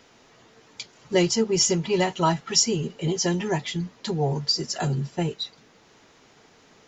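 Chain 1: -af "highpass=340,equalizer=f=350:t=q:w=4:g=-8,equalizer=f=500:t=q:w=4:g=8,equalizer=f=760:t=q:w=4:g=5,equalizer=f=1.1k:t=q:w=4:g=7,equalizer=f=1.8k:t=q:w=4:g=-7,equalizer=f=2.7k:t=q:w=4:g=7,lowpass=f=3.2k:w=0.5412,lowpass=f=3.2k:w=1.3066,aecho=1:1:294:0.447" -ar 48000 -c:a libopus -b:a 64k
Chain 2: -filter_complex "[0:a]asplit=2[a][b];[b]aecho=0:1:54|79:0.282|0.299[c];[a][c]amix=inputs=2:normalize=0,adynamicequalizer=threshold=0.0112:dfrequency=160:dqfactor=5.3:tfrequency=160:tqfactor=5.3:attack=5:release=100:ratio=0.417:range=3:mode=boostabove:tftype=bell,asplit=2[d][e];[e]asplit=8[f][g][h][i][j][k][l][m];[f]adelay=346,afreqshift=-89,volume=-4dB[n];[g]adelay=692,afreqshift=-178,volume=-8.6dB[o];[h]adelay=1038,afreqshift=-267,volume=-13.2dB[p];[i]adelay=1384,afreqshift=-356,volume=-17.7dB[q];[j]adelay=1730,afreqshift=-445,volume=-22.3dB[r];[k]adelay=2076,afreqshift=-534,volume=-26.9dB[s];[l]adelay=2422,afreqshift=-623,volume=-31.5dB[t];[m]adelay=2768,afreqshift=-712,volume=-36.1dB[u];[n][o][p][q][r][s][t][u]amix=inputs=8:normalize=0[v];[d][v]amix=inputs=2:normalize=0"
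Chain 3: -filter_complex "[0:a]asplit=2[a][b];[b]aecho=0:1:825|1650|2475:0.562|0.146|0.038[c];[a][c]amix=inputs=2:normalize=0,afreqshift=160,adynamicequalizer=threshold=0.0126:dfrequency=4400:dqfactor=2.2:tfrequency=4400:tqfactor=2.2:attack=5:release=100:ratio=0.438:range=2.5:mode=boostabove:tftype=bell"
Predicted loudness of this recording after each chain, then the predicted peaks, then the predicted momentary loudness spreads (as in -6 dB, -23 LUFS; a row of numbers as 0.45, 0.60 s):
-26.5, -21.0, -22.5 LUFS; -6.0, -5.5, -4.5 dBFS; 14, 17, 14 LU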